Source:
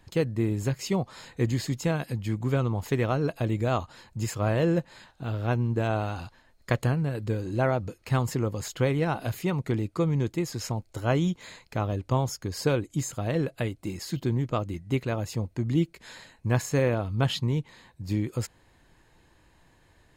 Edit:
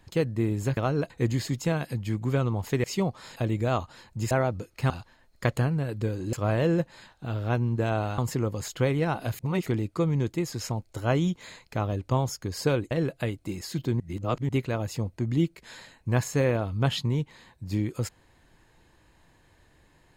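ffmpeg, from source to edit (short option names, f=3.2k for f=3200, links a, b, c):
-filter_complex "[0:a]asplit=14[a][b][c][d][e][f][g][h][i][j][k][l][m][n];[a]atrim=end=0.772[o];[b]atrim=start=3.028:end=3.362[p];[c]atrim=start=1.288:end=3.032[q];[d]atrim=start=0.768:end=1.292[r];[e]atrim=start=3.358:end=4.312[s];[f]atrim=start=7.588:end=8.182[t];[g]atrim=start=6.158:end=7.592[u];[h]atrim=start=4.308:end=6.162[v];[i]atrim=start=8.178:end=9.392[w];[j]atrim=start=9.388:end=9.662,asetpts=PTS-STARTPTS,areverse[x];[k]atrim=start=9.658:end=12.912[y];[l]atrim=start=13.288:end=14.382[z];[m]atrim=start=14.378:end=14.872,asetpts=PTS-STARTPTS,areverse[aa];[n]atrim=start=14.868[ab];[o][p]acrossfade=d=0.004:c1=hsin:c2=hsin[ac];[ac][q]acrossfade=d=0.004:c1=hsin:c2=hsin[ad];[ad][r]acrossfade=d=0.004:c1=hsin:c2=hsin[ae];[ae][s]acrossfade=d=0.004:c1=hsin:c2=hsin[af];[af][t]acrossfade=d=0.004:c1=hsin:c2=hsin[ag];[ag][u]acrossfade=d=0.004:c1=hsin:c2=hsin[ah];[ah][v]acrossfade=d=0.004:c1=hsin:c2=hsin[ai];[ai][w]acrossfade=d=0.004:c1=hsin:c2=hsin[aj];[aj][x]acrossfade=d=0.004:c1=hsin:c2=hsin[ak];[ak][y]acrossfade=d=0.004:c1=hsin:c2=hsin[al];[al][z]acrossfade=d=0.004:c1=hsin:c2=hsin[am];[am][aa]acrossfade=d=0.004:c1=hsin:c2=hsin[an];[an][ab]acrossfade=d=0.004:c1=hsin:c2=hsin"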